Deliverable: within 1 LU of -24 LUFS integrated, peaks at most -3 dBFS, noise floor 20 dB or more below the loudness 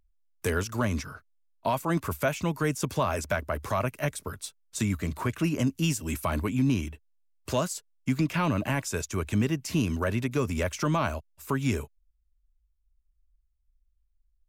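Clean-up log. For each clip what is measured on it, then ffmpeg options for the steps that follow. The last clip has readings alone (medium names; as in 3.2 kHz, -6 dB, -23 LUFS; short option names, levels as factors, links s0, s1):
loudness -29.0 LUFS; peak level -16.0 dBFS; loudness target -24.0 LUFS
-> -af "volume=1.78"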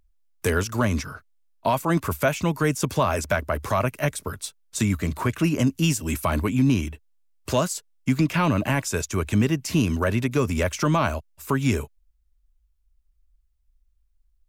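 loudness -24.0 LUFS; peak level -11.0 dBFS; noise floor -66 dBFS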